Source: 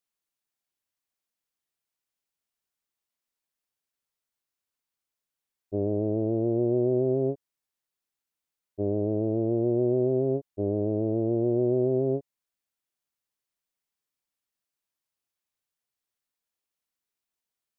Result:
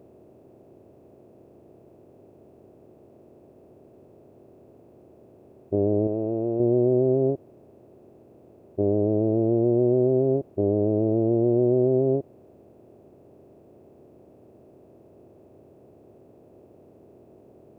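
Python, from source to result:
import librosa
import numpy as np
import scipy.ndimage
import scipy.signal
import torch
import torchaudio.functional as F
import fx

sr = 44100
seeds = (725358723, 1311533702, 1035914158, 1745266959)

y = fx.bin_compress(x, sr, power=0.4)
y = fx.low_shelf(y, sr, hz=420.0, db=-7.5, at=(6.07, 6.6))
y = F.gain(torch.from_numpy(y), 2.5).numpy()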